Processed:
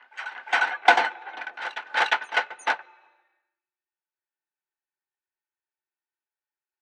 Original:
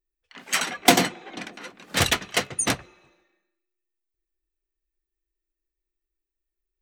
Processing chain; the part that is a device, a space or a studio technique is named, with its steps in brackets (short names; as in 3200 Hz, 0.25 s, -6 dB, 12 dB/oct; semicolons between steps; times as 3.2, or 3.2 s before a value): tone controls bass -8 dB, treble -3 dB; reverse echo 0.353 s -12 dB; tin-can telephone (BPF 680–2800 Hz; small resonant body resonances 870/1500 Hz, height 14 dB, ringing for 35 ms)